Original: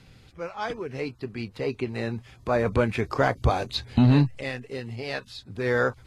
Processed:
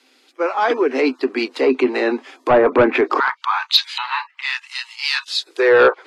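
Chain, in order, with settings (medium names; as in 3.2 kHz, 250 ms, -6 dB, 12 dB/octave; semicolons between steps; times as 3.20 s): low-pass that closes with the level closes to 1.8 kHz, closed at -21 dBFS; rippled Chebyshev high-pass 250 Hz, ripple 3 dB, from 3.18 s 890 Hz, from 5.26 s 320 Hz; sine folder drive 4 dB, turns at -14.5 dBFS; loudness maximiser +20 dB; three bands expanded up and down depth 70%; trim -7.5 dB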